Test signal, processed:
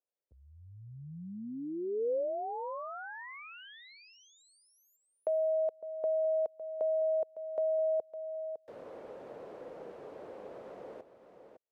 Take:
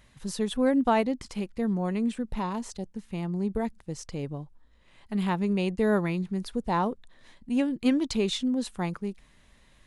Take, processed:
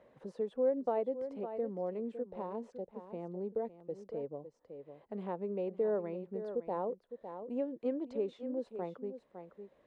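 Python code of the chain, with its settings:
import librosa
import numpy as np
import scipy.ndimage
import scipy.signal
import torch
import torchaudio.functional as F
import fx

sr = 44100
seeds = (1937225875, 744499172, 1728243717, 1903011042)

y = fx.bandpass_q(x, sr, hz=510.0, q=3.4)
y = y + 10.0 ** (-13.0 / 20.0) * np.pad(y, (int(557 * sr / 1000.0), 0))[:len(y)]
y = fx.band_squash(y, sr, depth_pct=40)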